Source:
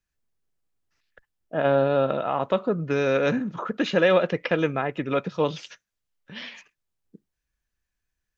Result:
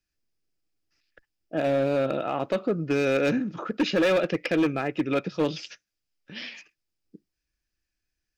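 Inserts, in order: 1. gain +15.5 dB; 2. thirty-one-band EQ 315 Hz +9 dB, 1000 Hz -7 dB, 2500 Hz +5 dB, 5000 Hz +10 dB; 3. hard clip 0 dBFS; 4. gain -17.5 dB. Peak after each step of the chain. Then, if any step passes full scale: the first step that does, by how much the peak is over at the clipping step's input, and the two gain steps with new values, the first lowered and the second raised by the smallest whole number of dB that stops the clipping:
+8.5, +9.5, 0.0, -17.5 dBFS; step 1, 9.5 dB; step 1 +5.5 dB, step 4 -7.5 dB

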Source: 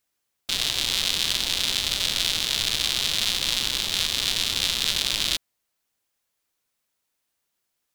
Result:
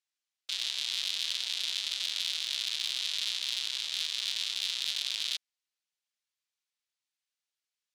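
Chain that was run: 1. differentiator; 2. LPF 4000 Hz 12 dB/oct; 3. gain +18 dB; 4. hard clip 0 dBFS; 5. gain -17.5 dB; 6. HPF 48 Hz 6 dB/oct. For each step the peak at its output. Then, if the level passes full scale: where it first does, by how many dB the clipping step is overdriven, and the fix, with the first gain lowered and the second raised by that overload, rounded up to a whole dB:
-8.0, -14.5, +3.5, 0.0, -17.5, -17.5 dBFS; step 3, 3.5 dB; step 3 +14 dB, step 5 -13.5 dB

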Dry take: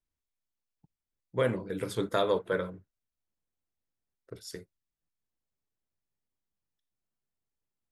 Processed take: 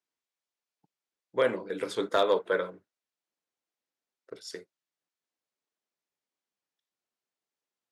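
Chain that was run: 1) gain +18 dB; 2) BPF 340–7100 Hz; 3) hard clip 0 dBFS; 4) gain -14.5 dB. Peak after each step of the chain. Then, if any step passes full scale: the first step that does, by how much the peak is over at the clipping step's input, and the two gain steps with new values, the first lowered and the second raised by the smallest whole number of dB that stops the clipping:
+3.5, +3.5, 0.0, -14.5 dBFS; step 1, 3.5 dB; step 1 +14 dB, step 4 -10.5 dB

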